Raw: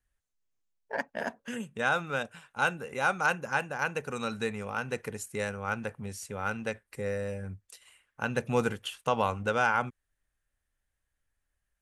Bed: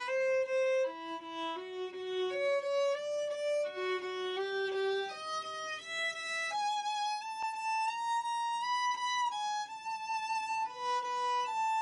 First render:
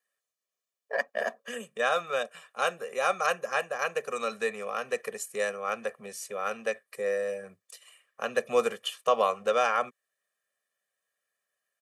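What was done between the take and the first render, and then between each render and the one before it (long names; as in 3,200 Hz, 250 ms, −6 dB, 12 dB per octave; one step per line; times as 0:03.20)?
high-pass filter 250 Hz 24 dB per octave
comb filter 1.7 ms, depth 98%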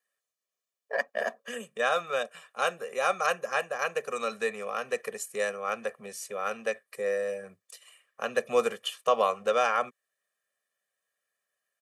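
no processing that can be heard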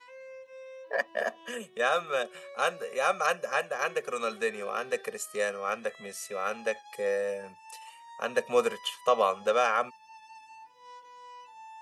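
mix in bed −15.5 dB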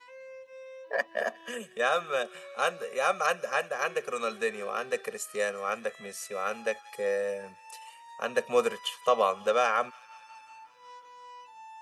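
delay with a high-pass on its return 180 ms, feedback 72%, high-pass 1,700 Hz, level −22 dB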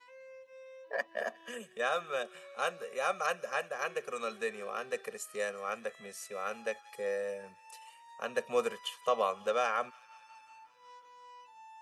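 level −5.5 dB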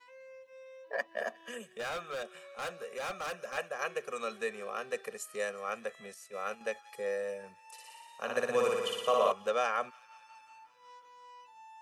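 0:01.66–0:03.58: hard clipping −34.5 dBFS
0:06.14–0:06.61: noise gate −43 dBFS, range −7 dB
0:07.71–0:09.32: flutter between parallel walls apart 10 metres, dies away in 1.4 s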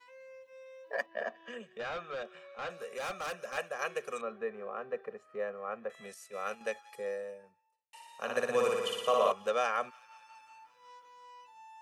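0:01.06–0:02.70: high-frequency loss of the air 160 metres
0:04.21–0:05.90: low-pass filter 1,300 Hz
0:06.71–0:07.93: fade out and dull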